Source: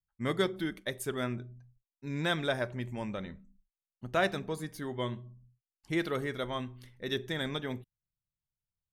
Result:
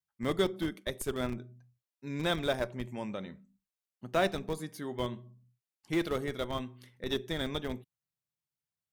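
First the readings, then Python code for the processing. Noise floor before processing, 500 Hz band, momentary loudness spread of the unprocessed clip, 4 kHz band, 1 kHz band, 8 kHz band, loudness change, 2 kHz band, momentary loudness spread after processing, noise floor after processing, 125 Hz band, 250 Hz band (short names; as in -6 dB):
under -85 dBFS, +1.0 dB, 14 LU, 0.0 dB, -0.5 dB, +1.0 dB, 0.0 dB, -3.0 dB, 13 LU, under -85 dBFS, -2.0 dB, +0.5 dB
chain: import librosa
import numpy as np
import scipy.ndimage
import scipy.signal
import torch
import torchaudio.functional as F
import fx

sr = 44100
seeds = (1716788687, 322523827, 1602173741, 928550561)

p1 = fx.dynamic_eq(x, sr, hz=1700.0, q=1.9, threshold_db=-51.0, ratio=4.0, max_db=-5)
p2 = scipy.signal.sosfilt(scipy.signal.butter(2, 140.0, 'highpass', fs=sr, output='sos'), p1)
p3 = fx.schmitt(p2, sr, flips_db=-29.0)
y = p2 + (p3 * 10.0 ** (-3.5 / 20.0))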